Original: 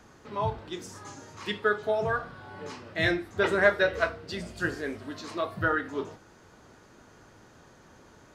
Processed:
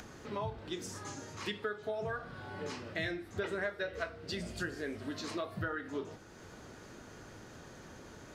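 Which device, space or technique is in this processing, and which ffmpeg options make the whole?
upward and downward compression: -af "equalizer=f=990:t=o:w=0.88:g=-4,acompressor=mode=upward:threshold=-46dB:ratio=2.5,acompressor=threshold=-36dB:ratio=5,volume=1dB"

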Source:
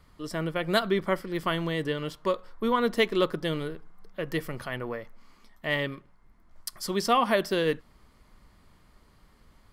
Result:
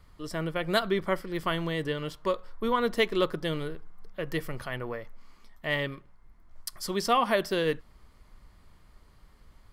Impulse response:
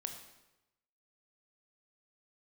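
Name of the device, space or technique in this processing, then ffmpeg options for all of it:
low shelf boost with a cut just above: -af "lowshelf=f=87:g=6,equalizer=f=230:t=o:w=0.96:g=-3,volume=-1dB"

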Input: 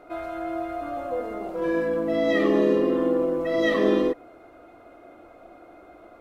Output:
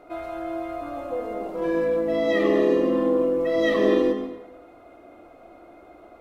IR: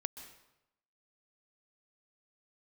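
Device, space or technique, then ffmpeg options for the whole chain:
bathroom: -filter_complex "[1:a]atrim=start_sample=2205[a];[0:a][a]afir=irnorm=-1:irlink=0,equalizer=f=1.5k:t=o:w=0.36:g=-4,volume=1.5dB"

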